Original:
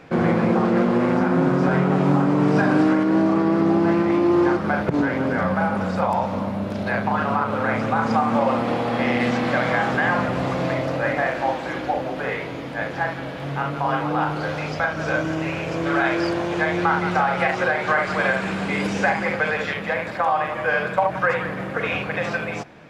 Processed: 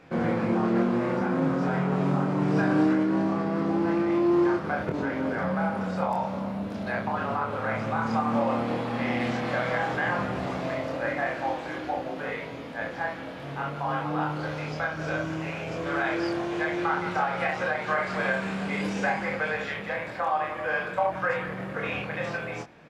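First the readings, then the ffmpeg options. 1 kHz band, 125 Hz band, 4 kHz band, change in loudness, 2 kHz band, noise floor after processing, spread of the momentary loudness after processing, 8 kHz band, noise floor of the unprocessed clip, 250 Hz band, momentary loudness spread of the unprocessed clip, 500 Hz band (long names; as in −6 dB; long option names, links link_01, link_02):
−6.5 dB, −6.5 dB, −6.5 dB, −6.5 dB, −6.5 dB, −37 dBFS, 8 LU, can't be measured, −31 dBFS, −6.0 dB, 8 LU, −6.5 dB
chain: -filter_complex "[0:a]asplit=2[link_01][link_02];[link_02]adelay=26,volume=-4dB[link_03];[link_01][link_03]amix=inputs=2:normalize=0,volume=-8dB"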